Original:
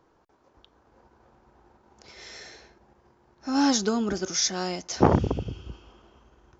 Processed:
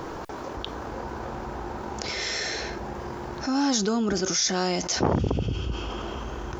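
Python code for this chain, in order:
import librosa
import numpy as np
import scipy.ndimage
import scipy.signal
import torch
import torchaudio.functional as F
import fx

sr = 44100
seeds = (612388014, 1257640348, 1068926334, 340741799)

y = fx.env_flatten(x, sr, amount_pct=70)
y = F.gain(torch.from_numpy(y), -6.5).numpy()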